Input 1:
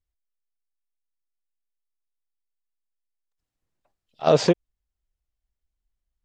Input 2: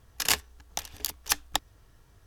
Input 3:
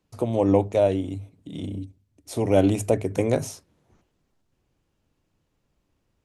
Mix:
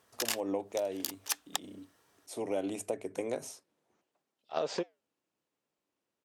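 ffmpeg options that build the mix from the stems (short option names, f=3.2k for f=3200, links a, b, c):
-filter_complex "[0:a]flanger=delay=4.7:depth=8.1:regen=-86:speed=0.66:shape=triangular,adelay=300,volume=-4dB[a];[1:a]volume=-2.5dB[b];[2:a]volume=-9dB,asplit=2[c][d];[d]apad=whole_len=99822[e];[b][e]sidechaincompress=threshold=-31dB:ratio=8:attack=10:release=199[f];[a][f][c]amix=inputs=3:normalize=0,highpass=310,equalizer=f=8.5k:w=6.2:g=3.5,acompressor=threshold=-29dB:ratio=6"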